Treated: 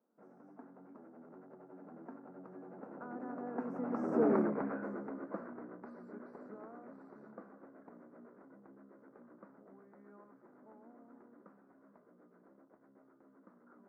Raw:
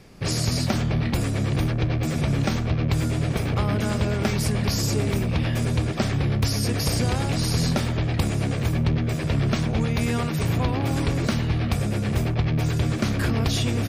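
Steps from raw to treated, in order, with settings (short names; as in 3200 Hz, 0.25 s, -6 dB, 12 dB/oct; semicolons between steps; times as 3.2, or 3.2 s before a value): Doppler pass-by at 4.32, 54 m/s, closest 9.2 m; elliptic band-pass 230–1400 Hz, stop band 40 dB; gain +1 dB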